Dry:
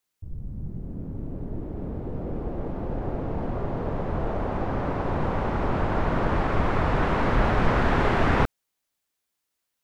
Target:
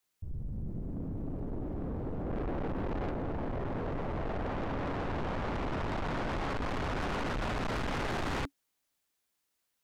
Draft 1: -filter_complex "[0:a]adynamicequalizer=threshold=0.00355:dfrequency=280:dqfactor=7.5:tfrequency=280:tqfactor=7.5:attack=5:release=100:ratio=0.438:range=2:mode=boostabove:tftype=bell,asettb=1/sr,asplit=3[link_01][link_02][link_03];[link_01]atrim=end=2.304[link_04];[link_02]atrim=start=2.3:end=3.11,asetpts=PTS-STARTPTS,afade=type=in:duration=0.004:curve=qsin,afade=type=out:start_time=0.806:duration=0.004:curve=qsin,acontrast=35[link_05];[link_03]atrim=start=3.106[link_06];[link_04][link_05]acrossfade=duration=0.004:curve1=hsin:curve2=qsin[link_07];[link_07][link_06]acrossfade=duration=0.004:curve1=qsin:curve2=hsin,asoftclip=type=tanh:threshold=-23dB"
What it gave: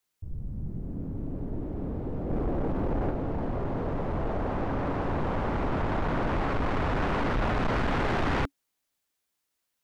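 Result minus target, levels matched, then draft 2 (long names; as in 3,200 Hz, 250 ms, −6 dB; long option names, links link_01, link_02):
soft clipping: distortion −5 dB
-filter_complex "[0:a]adynamicequalizer=threshold=0.00355:dfrequency=280:dqfactor=7.5:tfrequency=280:tqfactor=7.5:attack=5:release=100:ratio=0.438:range=2:mode=boostabove:tftype=bell,asettb=1/sr,asplit=3[link_01][link_02][link_03];[link_01]atrim=end=2.304[link_04];[link_02]atrim=start=2.3:end=3.11,asetpts=PTS-STARTPTS,afade=type=in:duration=0.004:curve=qsin,afade=type=out:start_time=0.806:duration=0.004:curve=qsin,acontrast=35[link_05];[link_03]atrim=start=3.106[link_06];[link_04][link_05]acrossfade=duration=0.004:curve1=hsin:curve2=qsin[link_07];[link_07][link_06]acrossfade=duration=0.004:curve1=qsin:curve2=hsin,asoftclip=type=tanh:threshold=-32dB"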